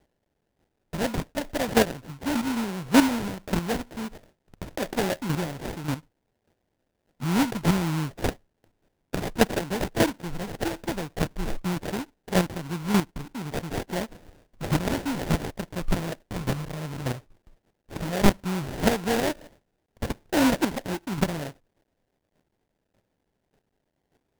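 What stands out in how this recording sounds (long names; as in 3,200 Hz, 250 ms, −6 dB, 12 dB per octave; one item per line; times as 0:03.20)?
a quantiser's noise floor 12 bits, dither triangular
chopped level 1.7 Hz, depth 65%, duty 10%
aliases and images of a low sample rate 1,200 Hz, jitter 20%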